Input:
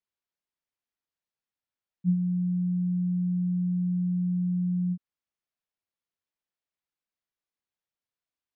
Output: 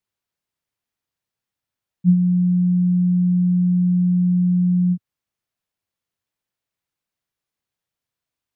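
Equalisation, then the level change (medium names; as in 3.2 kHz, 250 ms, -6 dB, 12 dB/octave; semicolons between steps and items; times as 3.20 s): peaking EQ 110 Hz +7.5 dB 1.3 oct; +6.5 dB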